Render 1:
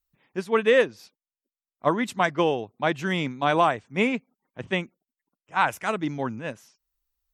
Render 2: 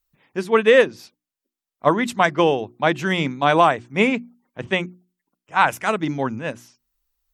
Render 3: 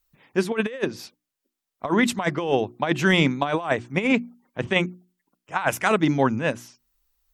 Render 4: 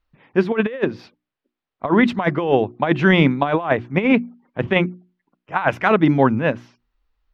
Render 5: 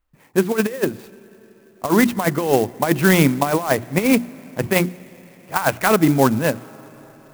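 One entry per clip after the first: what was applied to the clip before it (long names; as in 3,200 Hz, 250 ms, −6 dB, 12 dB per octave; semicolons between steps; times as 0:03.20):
mains-hum notches 60/120/180/240/300/360 Hz; level +5.5 dB
compressor whose output falls as the input rises −20 dBFS, ratio −0.5
high-frequency loss of the air 320 metres; level +6 dB
on a send at −21.5 dB: convolution reverb RT60 4.9 s, pre-delay 45 ms; on the sum: converter with an unsteady clock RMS 0.048 ms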